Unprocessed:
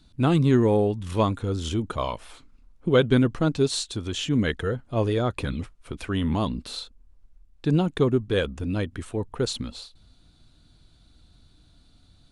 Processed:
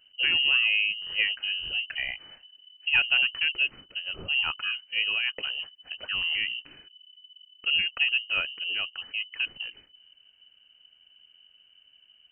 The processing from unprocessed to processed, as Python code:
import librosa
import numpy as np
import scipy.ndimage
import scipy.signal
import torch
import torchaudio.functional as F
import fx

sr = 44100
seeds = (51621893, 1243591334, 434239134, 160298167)

y = fx.freq_invert(x, sr, carrier_hz=3000)
y = F.gain(torch.from_numpy(y), -4.5).numpy()